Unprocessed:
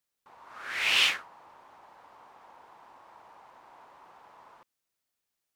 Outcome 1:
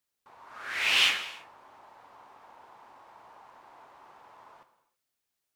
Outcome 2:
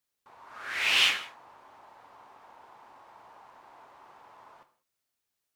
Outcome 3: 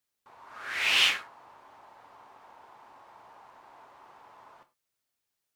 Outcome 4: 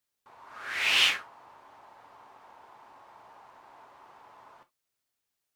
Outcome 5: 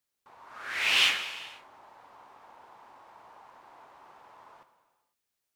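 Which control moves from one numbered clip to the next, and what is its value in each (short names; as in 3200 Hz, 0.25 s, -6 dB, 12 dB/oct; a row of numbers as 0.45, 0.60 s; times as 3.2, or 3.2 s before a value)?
non-linear reverb, gate: 350, 220, 130, 90, 530 ms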